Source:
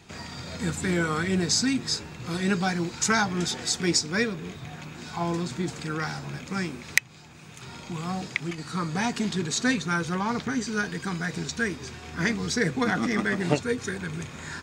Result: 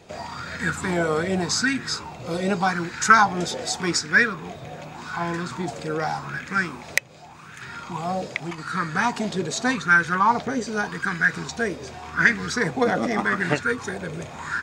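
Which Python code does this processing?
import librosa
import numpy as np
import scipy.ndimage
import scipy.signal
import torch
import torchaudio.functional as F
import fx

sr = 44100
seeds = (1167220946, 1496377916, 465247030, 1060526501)

y = fx.notch(x, sr, hz=1700.0, q=8.8, at=(1.85, 2.61))
y = fx.bell_lfo(y, sr, hz=0.85, low_hz=540.0, high_hz=1700.0, db=17)
y = F.gain(torch.from_numpy(y), -1.0).numpy()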